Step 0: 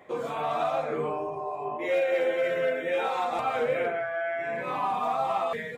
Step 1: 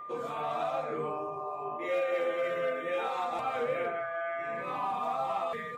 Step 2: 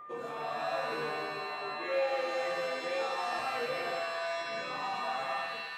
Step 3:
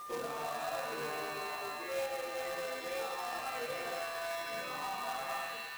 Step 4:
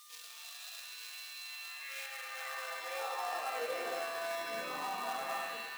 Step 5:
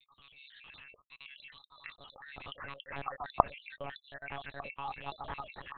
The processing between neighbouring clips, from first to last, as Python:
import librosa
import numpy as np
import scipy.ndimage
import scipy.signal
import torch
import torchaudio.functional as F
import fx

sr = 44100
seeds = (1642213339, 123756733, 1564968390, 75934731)

y1 = x + 10.0 ** (-35.0 / 20.0) * np.sin(2.0 * np.pi * 1200.0 * np.arange(len(x)) / sr)
y1 = y1 * 10.0 ** (-5.0 / 20.0)
y2 = fx.fade_out_tail(y1, sr, length_s=0.52)
y2 = fx.rev_shimmer(y2, sr, seeds[0], rt60_s=1.5, semitones=7, shimmer_db=-2, drr_db=5.0)
y2 = y2 * 10.0 ** (-4.5 / 20.0)
y3 = fx.rider(y2, sr, range_db=10, speed_s=0.5)
y3 = fx.quant_companded(y3, sr, bits=4)
y3 = y3 * 10.0 ** (-4.5 / 20.0)
y4 = fx.filter_sweep_highpass(y3, sr, from_hz=3500.0, to_hz=220.0, start_s=1.43, end_s=4.26, q=1.2)
y5 = fx.spec_dropout(y4, sr, seeds[1], share_pct=71)
y5 = fx.lpc_monotone(y5, sr, seeds[2], pitch_hz=140.0, order=8)
y5 = y5 * 10.0 ** (1.0 / 20.0)